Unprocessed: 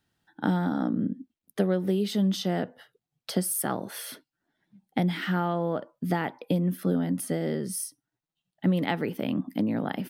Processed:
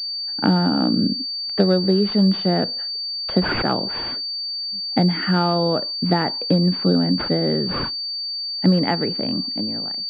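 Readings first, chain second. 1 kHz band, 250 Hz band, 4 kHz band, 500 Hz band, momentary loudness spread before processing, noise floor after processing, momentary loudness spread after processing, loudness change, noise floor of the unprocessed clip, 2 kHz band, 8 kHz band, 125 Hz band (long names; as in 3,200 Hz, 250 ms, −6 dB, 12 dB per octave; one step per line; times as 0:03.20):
+8.0 dB, +7.5 dB, +20.5 dB, +8.0 dB, 10 LU, −28 dBFS, 7 LU, +8.5 dB, below −85 dBFS, +7.0 dB, below −20 dB, +8.0 dB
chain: fade-out on the ending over 1.35 s
switching amplifier with a slow clock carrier 4,600 Hz
level +8 dB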